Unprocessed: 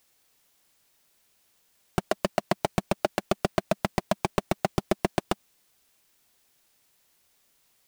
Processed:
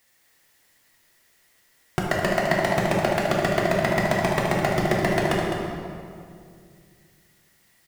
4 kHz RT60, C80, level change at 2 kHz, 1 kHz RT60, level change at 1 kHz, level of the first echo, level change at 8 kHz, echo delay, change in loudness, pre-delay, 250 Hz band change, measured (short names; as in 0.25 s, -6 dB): 1.5 s, 0.5 dB, +11.5 dB, 2.1 s, +6.0 dB, -7.0 dB, +4.5 dB, 0.208 s, +6.5 dB, 3 ms, +6.0 dB